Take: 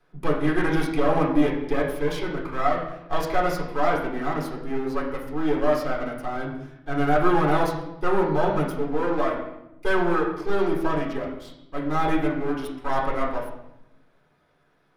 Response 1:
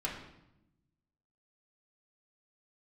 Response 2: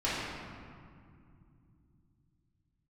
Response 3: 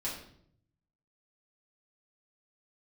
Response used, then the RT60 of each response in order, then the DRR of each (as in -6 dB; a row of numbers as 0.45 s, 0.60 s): 1; 0.90 s, 2.4 s, 0.65 s; -4.0 dB, -11.0 dB, -7.5 dB